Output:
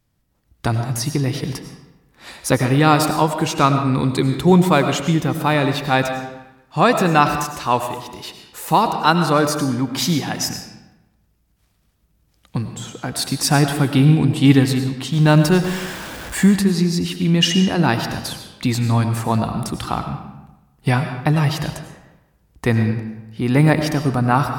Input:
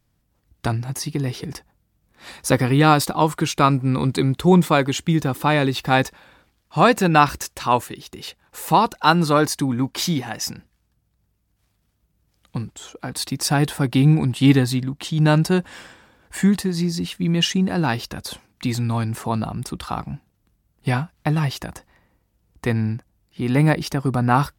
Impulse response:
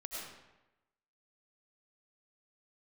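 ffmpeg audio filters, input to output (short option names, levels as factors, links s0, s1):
-filter_complex "[0:a]asettb=1/sr,asplit=3[s0][s1][s2];[s0]atrim=end=15.134[s3];[s1]atrim=start=15.13:end=16.46,asetpts=PTS-STARTPTS,afade=t=in:d=0.004:c=qsin,afade=t=out:st=1.326:d=0.004:c=qsin,aeval=exprs='val(0)+0.5*0.0282*sgn(val(0))':c=same[s4];[s2]atrim=start=16.456[s5];[s3][s4]acrossfade=d=0.004:c1=hsin:c2=qsin[s6];[s6][s5]acrossfade=d=0.004:c1=qsin:c2=hsin,dynaudnorm=f=250:g=5:m=1.58,asplit=2[s7][s8];[1:a]atrim=start_sample=2205[s9];[s8][s9]afir=irnorm=-1:irlink=0,volume=0.794[s10];[s7][s10]amix=inputs=2:normalize=0,volume=0.708"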